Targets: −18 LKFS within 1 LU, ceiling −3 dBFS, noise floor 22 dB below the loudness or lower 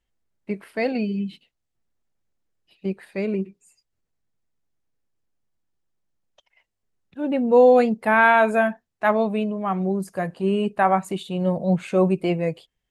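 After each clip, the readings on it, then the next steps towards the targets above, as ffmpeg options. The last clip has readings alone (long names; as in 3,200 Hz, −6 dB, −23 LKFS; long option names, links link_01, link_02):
integrated loudness −21.5 LKFS; sample peak −4.0 dBFS; target loudness −18.0 LKFS
→ -af "volume=3.5dB,alimiter=limit=-3dB:level=0:latency=1"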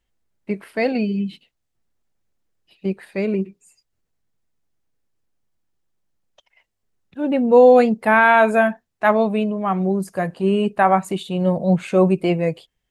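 integrated loudness −18.0 LKFS; sample peak −3.0 dBFS; background noise floor −76 dBFS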